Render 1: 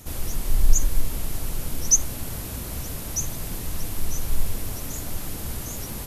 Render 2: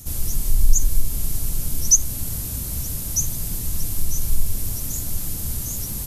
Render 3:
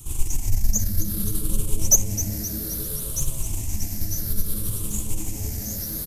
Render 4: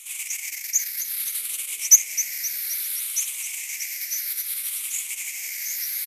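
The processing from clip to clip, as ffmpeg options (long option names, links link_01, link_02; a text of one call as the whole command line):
ffmpeg -i in.wav -filter_complex "[0:a]asplit=2[link_01][link_02];[link_02]alimiter=limit=-14dB:level=0:latency=1:release=234,volume=-1dB[link_03];[link_01][link_03]amix=inputs=2:normalize=0,bass=frequency=250:gain=10,treble=frequency=4000:gain=13,volume=-11dB" out.wav
ffmpeg -i in.wav -filter_complex "[0:a]afftfilt=real='re*pow(10,11/40*sin(2*PI*(0.66*log(max(b,1)*sr/1024/100)/log(2)-(-0.61)*(pts-256)/sr)))':imag='im*pow(10,11/40*sin(2*PI*(0.66*log(max(b,1)*sr/1024/100)/log(2)-(-0.61)*(pts-256)/sr)))':win_size=1024:overlap=0.75,aeval=exprs='(tanh(2.24*val(0)+0.7)-tanh(0.7))/2.24':channel_layout=same,asplit=7[link_01][link_02][link_03][link_04][link_05][link_06][link_07];[link_02]adelay=261,afreqshift=-110,volume=-12.5dB[link_08];[link_03]adelay=522,afreqshift=-220,volume=-17.9dB[link_09];[link_04]adelay=783,afreqshift=-330,volume=-23.2dB[link_10];[link_05]adelay=1044,afreqshift=-440,volume=-28.6dB[link_11];[link_06]adelay=1305,afreqshift=-550,volume=-33.9dB[link_12];[link_07]adelay=1566,afreqshift=-660,volume=-39.3dB[link_13];[link_01][link_08][link_09][link_10][link_11][link_12][link_13]amix=inputs=7:normalize=0" out.wav
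ffmpeg -i in.wav -af "highpass=frequency=2200:width_type=q:width=7.9,aresample=32000,aresample=44100,volume=2.5dB" out.wav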